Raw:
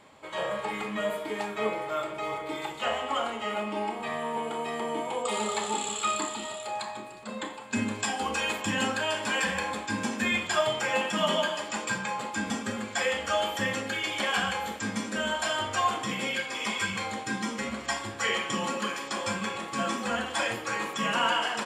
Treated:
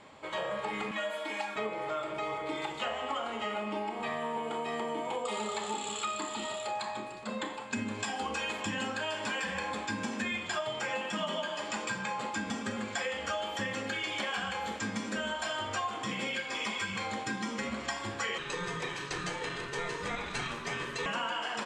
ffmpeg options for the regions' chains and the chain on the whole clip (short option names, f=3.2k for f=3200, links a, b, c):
-filter_complex "[0:a]asettb=1/sr,asplit=3[a][b][c];[a]atrim=end=0.914[d];[b]atrim=start=0.91:end=1.56,asetpts=PTS-STARTPTS,afade=t=in:d=0.004:c=qsin,afade=t=out:st=0.646:d=0.004:c=qsin,highpass=f=860:p=1,aecho=1:1:3.6:0.81,atrim=end_sample=28665[e];[c]atrim=start=1.556[f];[d][e]acrossfade=d=0.004:c1=hsin:c2=qsin[g];[g][f]acrossfade=d=0.004:c1=qsin:c2=hsin,asettb=1/sr,asplit=3[h][i][j];[h]atrim=end=18.384[k];[i]atrim=start=18.38:end=21.06,asetpts=PTS-STARTPTS,afade=t=in:d=0.004:c=qsin,afade=t=out:st=2.676:d=0.004:c=qsin,aeval=exprs='val(0)*sin(2*PI*700*n/s)':c=same,bandreject=f=910:w=27[l];[j]atrim=start=21.056[m];[k][l]acrossfade=d=0.004:c1=hsin:c2=qsin[n];[n][m]acrossfade=d=0.004:c1=qsin:c2=hsin,acompressor=threshold=-33dB:ratio=6,lowpass=7.3k,volume=1.5dB"